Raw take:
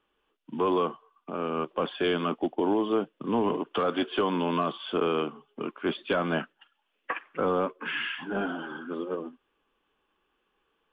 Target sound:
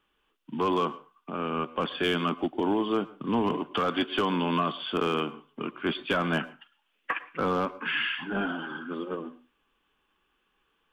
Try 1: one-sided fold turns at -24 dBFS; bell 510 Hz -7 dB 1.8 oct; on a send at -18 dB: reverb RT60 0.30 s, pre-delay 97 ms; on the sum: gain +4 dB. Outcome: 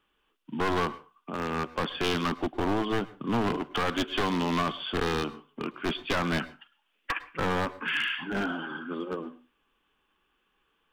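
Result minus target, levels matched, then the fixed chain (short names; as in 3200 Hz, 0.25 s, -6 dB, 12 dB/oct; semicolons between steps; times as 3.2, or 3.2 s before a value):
one-sided fold: distortion +26 dB
one-sided fold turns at -18 dBFS; bell 510 Hz -7 dB 1.8 oct; on a send at -18 dB: reverb RT60 0.30 s, pre-delay 97 ms; on the sum: gain +4 dB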